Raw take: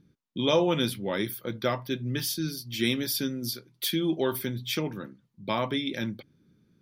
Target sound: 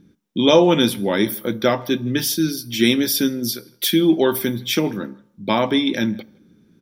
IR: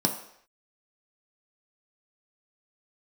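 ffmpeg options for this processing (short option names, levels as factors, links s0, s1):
-filter_complex "[0:a]asplit=2[s0][s1];[s1]adelay=160,highpass=300,lowpass=3400,asoftclip=type=hard:threshold=0.0891,volume=0.0562[s2];[s0][s2]amix=inputs=2:normalize=0,asplit=2[s3][s4];[1:a]atrim=start_sample=2205,highshelf=f=8600:g=7.5[s5];[s4][s5]afir=irnorm=-1:irlink=0,volume=0.0841[s6];[s3][s6]amix=inputs=2:normalize=0,volume=2.51"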